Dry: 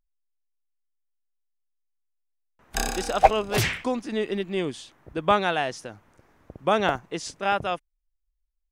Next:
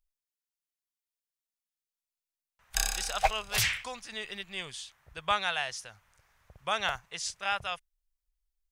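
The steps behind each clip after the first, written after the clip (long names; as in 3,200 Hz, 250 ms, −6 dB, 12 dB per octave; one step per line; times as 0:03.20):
guitar amp tone stack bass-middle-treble 10-0-10
level +2 dB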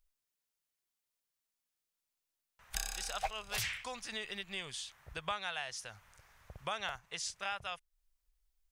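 downward compressor 2.5 to 1, threshold −45 dBFS, peak gain reduction 16.5 dB
level +4 dB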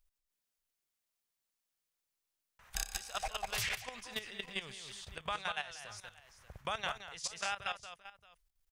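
multi-tap delay 192/585 ms −6/−15 dB
output level in coarse steps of 13 dB
level +3.5 dB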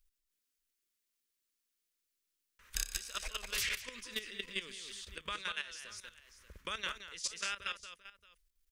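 phaser with its sweep stopped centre 310 Hz, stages 4
level +2 dB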